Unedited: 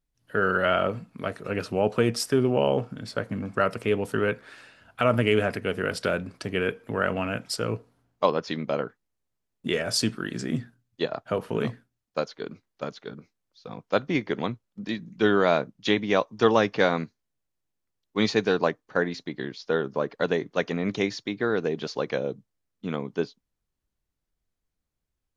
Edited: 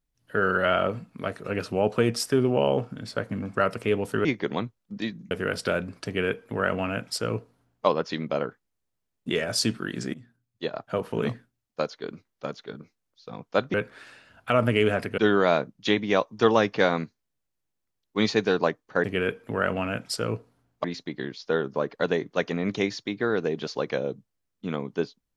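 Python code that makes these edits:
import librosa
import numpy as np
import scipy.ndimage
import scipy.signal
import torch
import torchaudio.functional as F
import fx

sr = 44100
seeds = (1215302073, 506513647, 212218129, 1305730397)

y = fx.edit(x, sr, fx.swap(start_s=4.25, length_s=1.44, other_s=14.12, other_length_s=1.06),
    fx.duplicate(start_s=6.44, length_s=1.8, to_s=19.04),
    fx.fade_in_from(start_s=10.52, length_s=1.08, curve='qsin', floor_db=-23.0), tone=tone)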